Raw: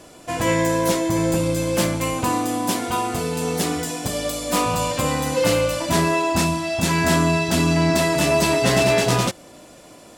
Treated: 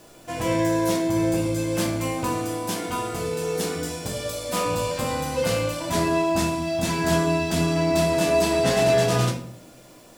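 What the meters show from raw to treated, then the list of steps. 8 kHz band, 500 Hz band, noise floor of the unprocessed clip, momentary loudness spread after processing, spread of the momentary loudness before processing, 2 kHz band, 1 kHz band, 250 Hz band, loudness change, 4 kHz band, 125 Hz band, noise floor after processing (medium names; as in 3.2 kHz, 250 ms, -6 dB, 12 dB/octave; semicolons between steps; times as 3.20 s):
-5.5 dB, -1.5 dB, -45 dBFS, 8 LU, 7 LU, -5.5 dB, -4.5 dB, -3.0 dB, -3.0 dB, -4.5 dB, -3.5 dB, -48 dBFS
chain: simulated room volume 74 m³, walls mixed, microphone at 0.59 m; word length cut 8-bit, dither none; trim -6.5 dB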